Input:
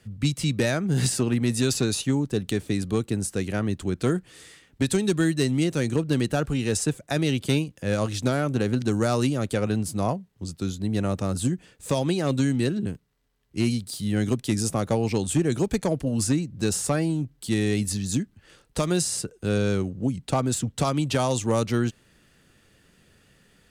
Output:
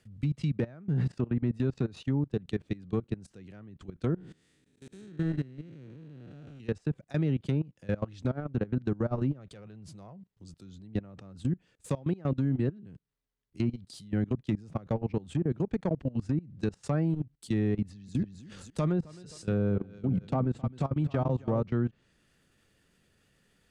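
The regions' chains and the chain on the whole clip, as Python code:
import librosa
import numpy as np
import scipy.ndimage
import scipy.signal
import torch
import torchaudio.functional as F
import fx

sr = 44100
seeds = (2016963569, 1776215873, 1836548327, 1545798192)

y = fx.chain(x, sr, fx.spec_blur(span_ms=325.0),
    fx.auto_swell(attack_ms=216.0), at=(4.15, 6.6))
y = fx.chain(y, sr, fx.peak_eq(hz=260.0, db=-10.5, octaves=0.25),
    fx.transient(attack_db=-6, sustain_db=2), at=(9.39, 10.31))
y = fx.chain(y, sr, fx.echo_feedback(ms=263, feedback_pct=16, wet_db=-9.0),
    fx.sustainer(db_per_s=47.0), at=(17.81, 21.61))
y = fx.env_lowpass_down(y, sr, base_hz=1100.0, full_db=-18.0)
y = fx.dynamic_eq(y, sr, hz=150.0, q=1.3, threshold_db=-36.0, ratio=4.0, max_db=6)
y = fx.level_steps(y, sr, step_db=21)
y = y * librosa.db_to_amplitude(-5.5)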